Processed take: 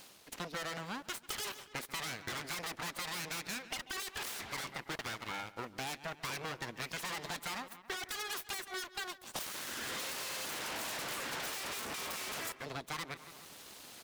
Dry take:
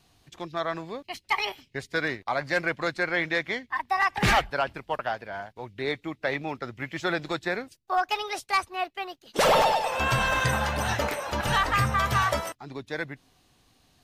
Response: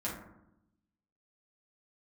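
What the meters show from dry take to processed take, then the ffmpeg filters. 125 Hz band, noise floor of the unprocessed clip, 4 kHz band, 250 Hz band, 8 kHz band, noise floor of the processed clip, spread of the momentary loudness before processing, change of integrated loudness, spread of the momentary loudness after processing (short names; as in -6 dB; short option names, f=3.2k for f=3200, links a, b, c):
-18.0 dB, -66 dBFS, -7.0 dB, -14.0 dB, -2.0 dB, -58 dBFS, 13 LU, -12.5 dB, 4 LU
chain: -filter_complex "[0:a]aeval=exprs='abs(val(0))':c=same,highshelf=f=10k:g=6,asplit=2[a][b];[b]adelay=138,lowpass=f=3.8k:p=1,volume=-23.5dB,asplit=2[c][d];[d]adelay=138,lowpass=f=3.8k:p=1,volume=0.5,asplit=2[e][f];[f]adelay=138,lowpass=f=3.8k:p=1,volume=0.5[g];[a][c][e][g]amix=inputs=4:normalize=0,areverse,acompressor=mode=upward:threshold=-43dB:ratio=2.5,areverse,volume=27.5dB,asoftclip=hard,volume=-27.5dB,highpass=f=230:p=1,acompressor=threshold=-43dB:ratio=6,volume=5.5dB"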